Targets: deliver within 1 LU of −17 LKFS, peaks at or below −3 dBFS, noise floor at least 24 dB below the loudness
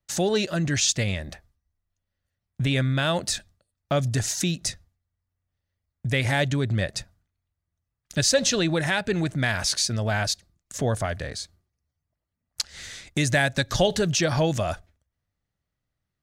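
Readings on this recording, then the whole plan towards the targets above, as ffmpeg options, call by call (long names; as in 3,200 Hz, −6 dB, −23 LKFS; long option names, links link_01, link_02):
integrated loudness −24.5 LKFS; sample peak −7.0 dBFS; target loudness −17.0 LKFS
→ -af "volume=7.5dB,alimiter=limit=-3dB:level=0:latency=1"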